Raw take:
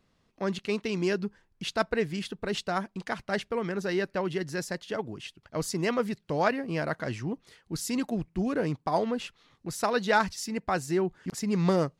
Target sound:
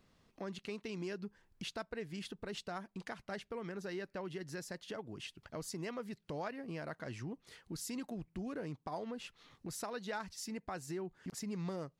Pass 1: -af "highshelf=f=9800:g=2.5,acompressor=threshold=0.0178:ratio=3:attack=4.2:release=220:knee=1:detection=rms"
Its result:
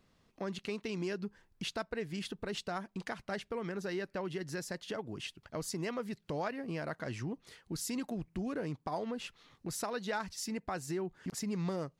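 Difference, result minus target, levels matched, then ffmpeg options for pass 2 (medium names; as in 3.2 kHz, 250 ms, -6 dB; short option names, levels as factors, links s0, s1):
compression: peak gain reduction -4.5 dB
-af "highshelf=f=9800:g=2.5,acompressor=threshold=0.00794:ratio=3:attack=4.2:release=220:knee=1:detection=rms"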